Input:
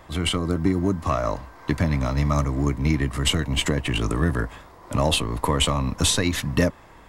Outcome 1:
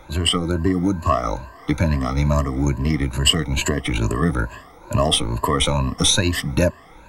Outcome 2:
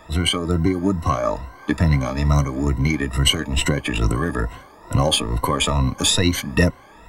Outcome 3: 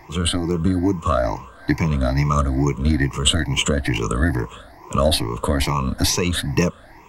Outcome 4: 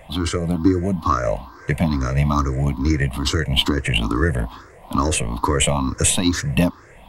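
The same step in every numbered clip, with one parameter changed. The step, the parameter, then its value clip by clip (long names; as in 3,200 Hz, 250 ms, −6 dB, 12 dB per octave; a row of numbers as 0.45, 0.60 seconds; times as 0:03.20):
rippled gain that drifts along the octave scale, ripples per octave: 1.4, 2, 0.75, 0.5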